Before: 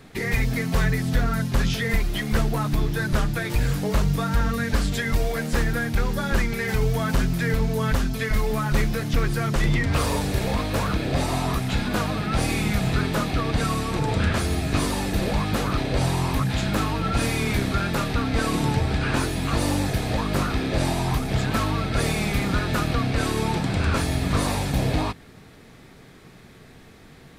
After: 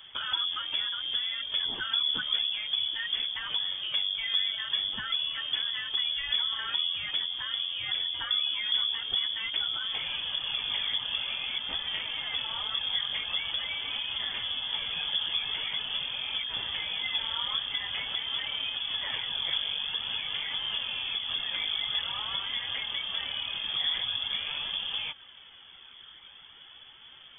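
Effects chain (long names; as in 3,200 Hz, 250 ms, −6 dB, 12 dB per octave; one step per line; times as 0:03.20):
downward compressor, threshold −26 dBFS, peak gain reduction 10 dB
flanger 0.46 Hz, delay 0.4 ms, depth 3.6 ms, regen +52%
voice inversion scrambler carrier 3,400 Hz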